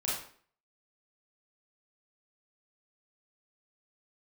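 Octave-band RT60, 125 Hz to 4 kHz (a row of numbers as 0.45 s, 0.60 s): 0.45 s, 0.55 s, 0.50 s, 0.50 s, 0.45 s, 0.40 s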